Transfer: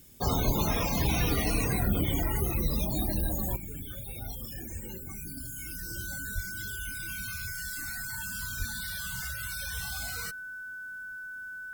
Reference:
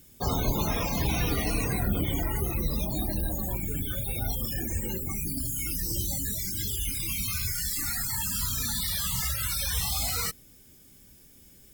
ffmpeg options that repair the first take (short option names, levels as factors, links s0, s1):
-filter_complex "[0:a]bandreject=f=1500:w=30,asplit=3[s0][s1][s2];[s0]afade=t=out:st=6.34:d=0.02[s3];[s1]highpass=f=140:w=0.5412,highpass=f=140:w=1.3066,afade=t=in:st=6.34:d=0.02,afade=t=out:st=6.46:d=0.02[s4];[s2]afade=t=in:st=6.46:d=0.02[s5];[s3][s4][s5]amix=inputs=3:normalize=0,asplit=3[s6][s7][s8];[s6]afade=t=out:st=8.58:d=0.02[s9];[s7]highpass=f=140:w=0.5412,highpass=f=140:w=1.3066,afade=t=in:st=8.58:d=0.02,afade=t=out:st=8.7:d=0.02[s10];[s8]afade=t=in:st=8.7:d=0.02[s11];[s9][s10][s11]amix=inputs=3:normalize=0,asetnsamples=n=441:p=0,asendcmd='3.56 volume volume 8.5dB',volume=1"